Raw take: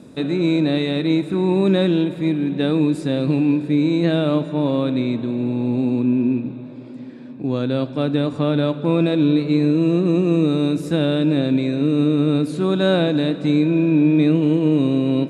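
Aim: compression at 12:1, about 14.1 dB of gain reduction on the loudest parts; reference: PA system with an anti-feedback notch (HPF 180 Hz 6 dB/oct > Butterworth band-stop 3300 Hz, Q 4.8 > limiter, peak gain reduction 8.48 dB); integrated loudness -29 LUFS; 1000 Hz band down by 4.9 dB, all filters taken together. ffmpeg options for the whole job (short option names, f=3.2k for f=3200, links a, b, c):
-af "equalizer=f=1k:t=o:g=-6.5,acompressor=threshold=-27dB:ratio=12,highpass=f=180:p=1,asuperstop=centerf=3300:order=8:qfactor=4.8,volume=7.5dB,alimiter=limit=-20.5dB:level=0:latency=1"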